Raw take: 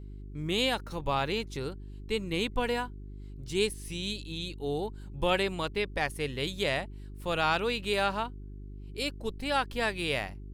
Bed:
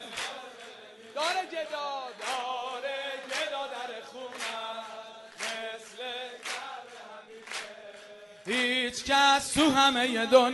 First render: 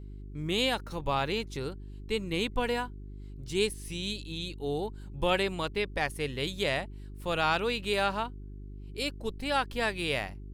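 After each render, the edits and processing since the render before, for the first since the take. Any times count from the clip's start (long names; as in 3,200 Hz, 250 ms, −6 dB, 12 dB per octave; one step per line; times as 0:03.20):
no processing that can be heard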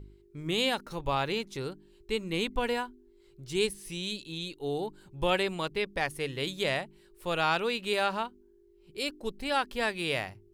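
hum removal 50 Hz, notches 6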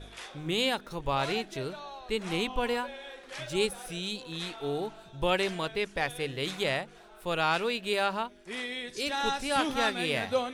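mix in bed −9 dB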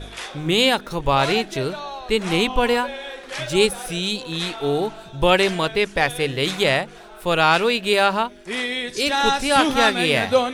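level +11 dB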